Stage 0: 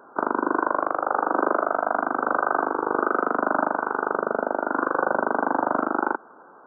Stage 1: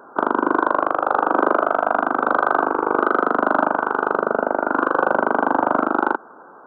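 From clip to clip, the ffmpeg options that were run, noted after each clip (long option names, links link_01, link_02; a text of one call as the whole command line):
ffmpeg -i in.wav -af "acontrast=29" out.wav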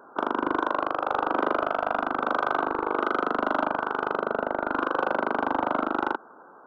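ffmpeg -i in.wav -af "asoftclip=type=tanh:threshold=-8dB,volume=-6dB" out.wav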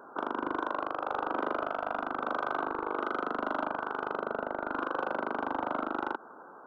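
ffmpeg -i in.wav -af "alimiter=limit=-23dB:level=0:latency=1:release=83" out.wav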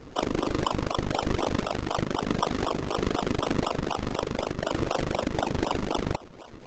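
ffmpeg -i in.wav -filter_complex "[0:a]acrossover=split=150|510|2900[link_01][link_02][link_03][link_04];[link_03]acrusher=samples=39:mix=1:aa=0.000001:lfo=1:lforange=39:lforate=4[link_05];[link_01][link_02][link_05][link_04]amix=inputs=4:normalize=0,aresample=16000,aresample=44100,volume=8dB" -ar 48000 -c:a libopus -b:a 10k out.opus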